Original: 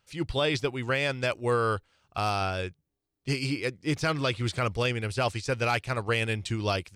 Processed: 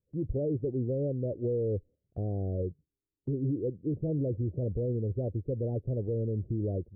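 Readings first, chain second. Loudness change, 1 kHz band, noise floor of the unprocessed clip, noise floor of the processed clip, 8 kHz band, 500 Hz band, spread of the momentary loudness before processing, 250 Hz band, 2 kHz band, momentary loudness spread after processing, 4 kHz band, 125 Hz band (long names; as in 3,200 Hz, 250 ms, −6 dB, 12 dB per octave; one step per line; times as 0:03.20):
−4.0 dB, below −20 dB, −83 dBFS, below −85 dBFS, below −35 dB, −3.0 dB, 5 LU, 0.0 dB, below −40 dB, 4 LU, below −40 dB, +0.5 dB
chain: Butterworth low-pass 530 Hz 48 dB per octave
noise gate −54 dBFS, range −12 dB
brickwall limiter −27.5 dBFS, peak gain reduction 9.5 dB
level +4 dB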